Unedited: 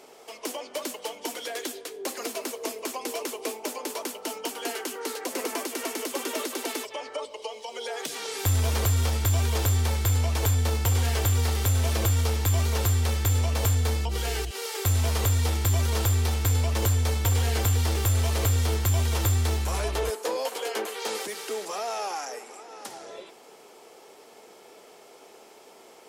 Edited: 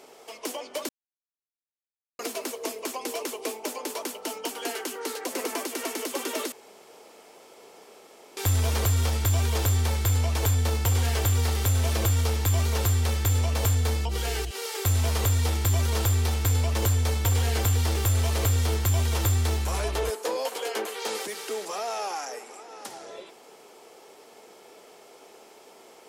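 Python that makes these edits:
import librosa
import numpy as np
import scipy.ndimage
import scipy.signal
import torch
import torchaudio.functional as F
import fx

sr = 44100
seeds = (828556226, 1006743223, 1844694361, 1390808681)

y = fx.edit(x, sr, fx.silence(start_s=0.89, length_s=1.3),
    fx.room_tone_fill(start_s=6.52, length_s=1.85), tone=tone)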